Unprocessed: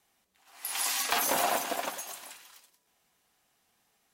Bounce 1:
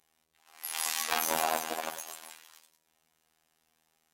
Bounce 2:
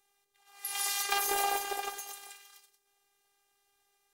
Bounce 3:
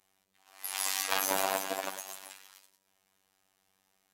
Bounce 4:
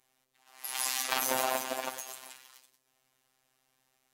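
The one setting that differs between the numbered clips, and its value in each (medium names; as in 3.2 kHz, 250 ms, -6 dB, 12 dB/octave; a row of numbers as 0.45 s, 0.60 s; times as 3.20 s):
robot voice, frequency: 80 Hz, 400 Hz, 96 Hz, 130 Hz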